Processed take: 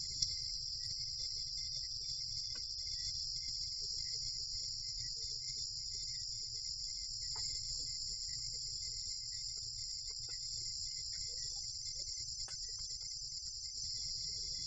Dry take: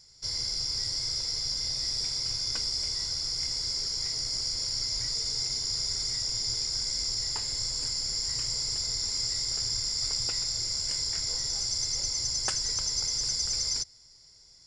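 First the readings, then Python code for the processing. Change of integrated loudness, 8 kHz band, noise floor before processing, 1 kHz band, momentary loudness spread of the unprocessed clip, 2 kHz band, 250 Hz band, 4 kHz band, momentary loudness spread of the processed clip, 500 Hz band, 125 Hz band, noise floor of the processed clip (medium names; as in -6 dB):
-11.5 dB, -12.5 dB, -56 dBFS, under -20 dB, 2 LU, -17.5 dB, under -15 dB, -11.0 dB, 3 LU, under -15 dB, -11.0 dB, -46 dBFS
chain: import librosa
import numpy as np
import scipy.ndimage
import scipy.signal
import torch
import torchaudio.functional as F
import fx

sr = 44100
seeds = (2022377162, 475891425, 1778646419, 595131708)

y = fx.spec_gate(x, sr, threshold_db=-20, keep='strong')
y = fx.over_compress(y, sr, threshold_db=-40.0, ratio=-0.5)
y = F.gain(torch.from_numpy(y), 1.5).numpy()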